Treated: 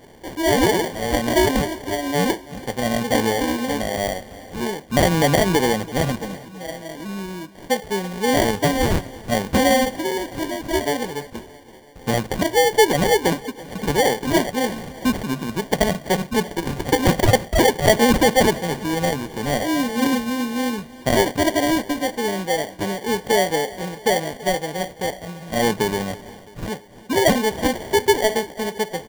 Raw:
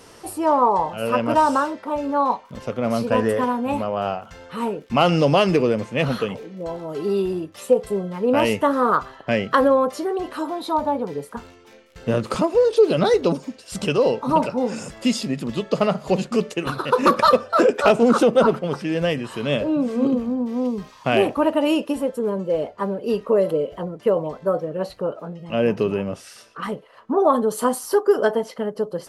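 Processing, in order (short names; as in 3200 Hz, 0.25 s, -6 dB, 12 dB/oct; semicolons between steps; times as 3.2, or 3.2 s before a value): 6.18–7.82 fixed phaser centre 410 Hz, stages 6; sample-rate reducer 1300 Hz, jitter 0%; feedback echo 0.332 s, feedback 58%, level -20 dB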